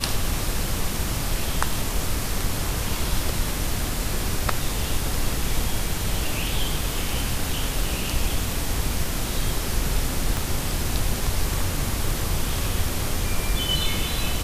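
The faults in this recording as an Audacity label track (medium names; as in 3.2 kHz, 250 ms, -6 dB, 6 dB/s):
10.370000	10.370000	pop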